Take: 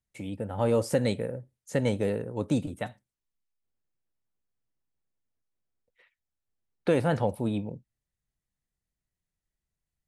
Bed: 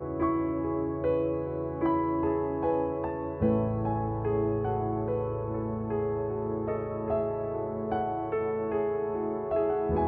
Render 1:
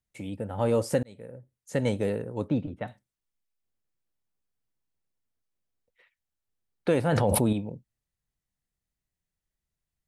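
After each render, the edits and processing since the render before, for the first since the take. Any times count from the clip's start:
0:01.03–0:01.81: fade in
0:02.48–0:02.88: high-frequency loss of the air 330 metres
0:07.12–0:07.53: envelope flattener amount 100%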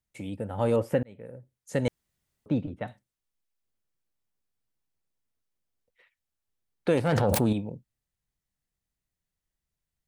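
0:00.76–0:01.26: flat-topped bell 6,400 Hz −15 dB
0:01.88–0:02.46: fill with room tone
0:06.97–0:07.54: phase distortion by the signal itself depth 0.15 ms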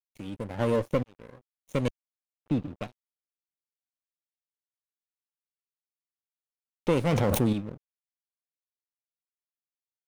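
lower of the sound and its delayed copy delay 0.31 ms
dead-zone distortion −46.5 dBFS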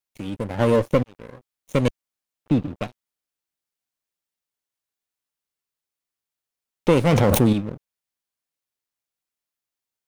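level +7.5 dB

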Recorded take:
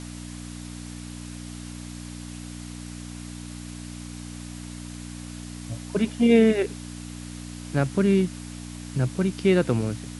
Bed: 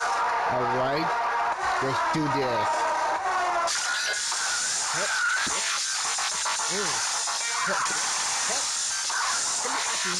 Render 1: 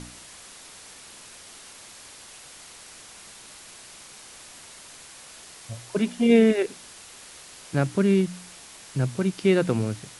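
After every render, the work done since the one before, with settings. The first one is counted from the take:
hum removal 60 Hz, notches 5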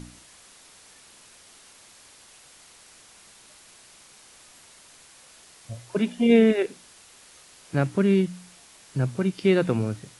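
noise reduction from a noise print 6 dB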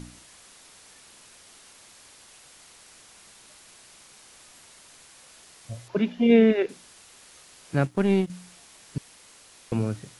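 0:05.88–0:06.69: moving average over 5 samples
0:07.85–0:08.30: power curve on the samples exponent 1.4
0:08.98–0:09.72: fill with room tone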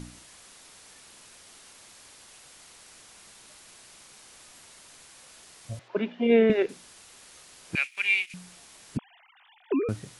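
0:05.79–0:06.50: band-pass filter 300–3,100 Hz
0:07.75–0:08.34: high-pass with resonance 2,400 Hz, resonance Q 12
0:08.97–0:09.89: three sine waves on the formant tracks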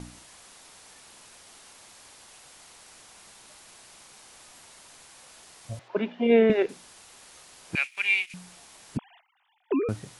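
noise gate −53 dBFS, range −13 dB
parametric band 830 Hz +4 dB 0.93 octaves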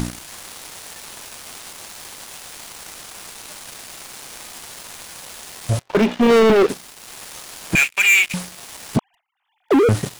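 upward compression, threshold −44 dBFS
leveller curve on the samples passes 5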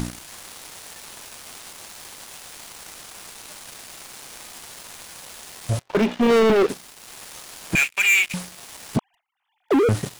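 level −3.5 dB

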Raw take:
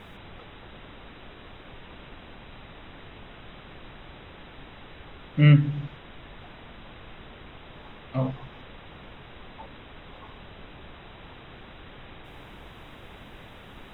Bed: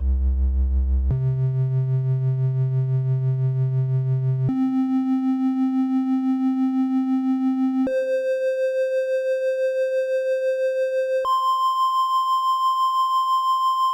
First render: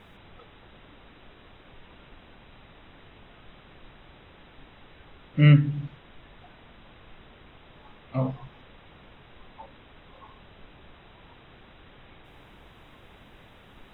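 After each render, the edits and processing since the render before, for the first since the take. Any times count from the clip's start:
noise reduction from a noise print 6 dB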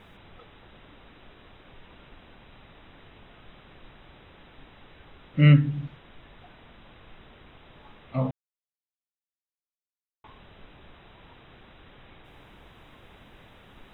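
0:08.31–0:10.24: silence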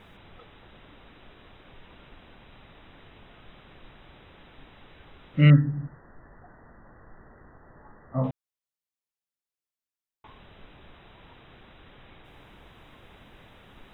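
0:05.50–0:08.24: linear-phase brick-wall low-pass 2,000 Hz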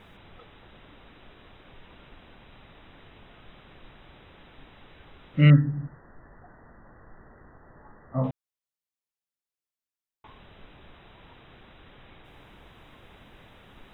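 no processing that can be heard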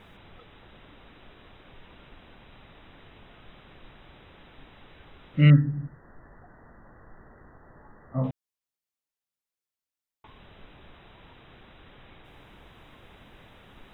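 dynamic equaliser 870 Hz, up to −4 dB, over −53 dBFS, Q 0.73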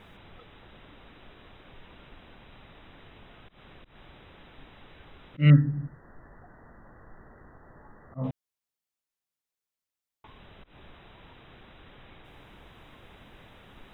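volume swells 134 ms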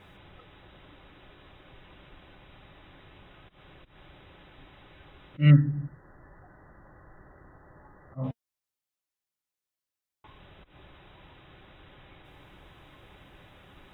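notch comb filter 230 Hz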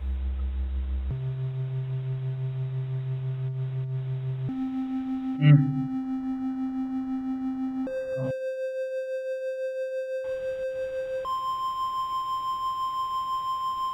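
mix in bed −9 dB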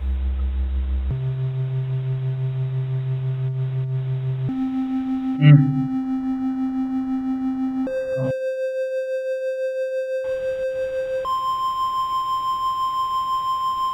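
level +6.5 dB
brickwall limiter −2 dBFS, peak gain reduction 1 dB

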